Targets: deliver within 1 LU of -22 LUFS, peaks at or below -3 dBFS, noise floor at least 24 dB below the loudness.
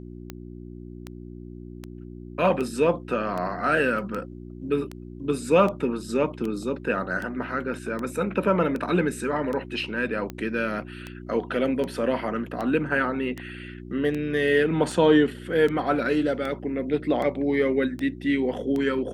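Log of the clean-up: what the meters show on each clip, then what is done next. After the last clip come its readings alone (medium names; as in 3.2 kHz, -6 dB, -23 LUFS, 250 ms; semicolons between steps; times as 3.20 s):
clicks found 25; hum 60 Hz; highest harmonic 360 Hz; hum level -38 dBFS; loudness -25.0 LUFS; peak level -7.0 dBFS; loudness target -22.0 LUFS
-> de-click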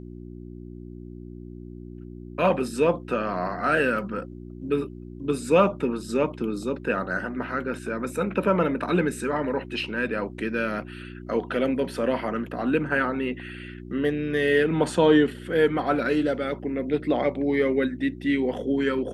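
clicks found 0; hum 60 Hz; highest harmonic 360 Hz; hum level -38 dBFS
-> de-hum 60 Hz, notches 6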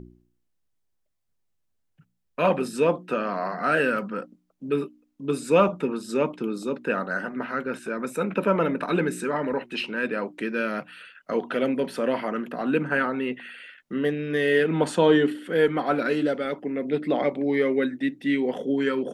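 hum not found; loudness -25.5 LUFS; peak level -7.0 dBFS; loudness target -22.0 LUFS
-> trim +3.5 dB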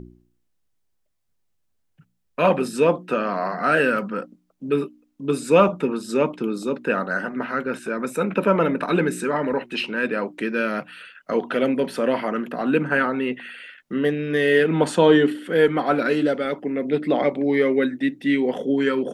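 loudness -22.0 LUFS; peak level -3.5 dBFS; noise floor -70 dBFS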